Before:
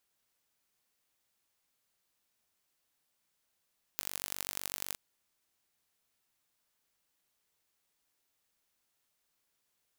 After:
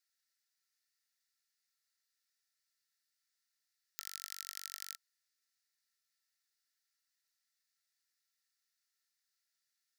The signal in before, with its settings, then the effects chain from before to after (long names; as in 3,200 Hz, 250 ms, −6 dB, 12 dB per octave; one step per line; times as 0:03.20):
impulse train 48 per second, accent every 4, −7 dBFS 0.97 s
Chebyshev high-pass with heavy ripple 1,300 Hz, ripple 9 dB
notch filter 3,200 Hz, Q 16